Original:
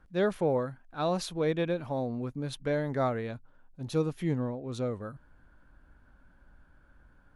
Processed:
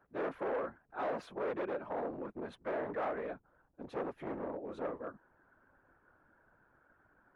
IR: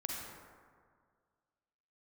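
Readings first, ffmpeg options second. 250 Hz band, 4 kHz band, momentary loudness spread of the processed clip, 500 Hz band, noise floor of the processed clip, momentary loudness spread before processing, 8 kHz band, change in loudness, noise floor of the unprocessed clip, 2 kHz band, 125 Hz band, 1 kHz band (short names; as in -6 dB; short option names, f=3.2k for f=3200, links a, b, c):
-11.0 dB, -16.5 dB, 8 LU, -7.0 dB, -72 dBFS, 9 LU, under -20 dB, -8.0 dB, -61 dBFS, -5.0 dB, -21.0 dB, -3.5 dB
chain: -filter_complex "[0:a]afftfilt=real='hypot(re,im)*cos(2*PI*random(0))':imag='hypot(re,im)*sin(2*PI*random(1))':win_size=512:overlap=0.75,asoftclip=type=hard:threshold=-37.5dB,acrossover=split=290 2100:gain=0.1 1 0.0631[a][b][c];[a][b][c]amix=inputs=3:normalize=0,volume=6dB"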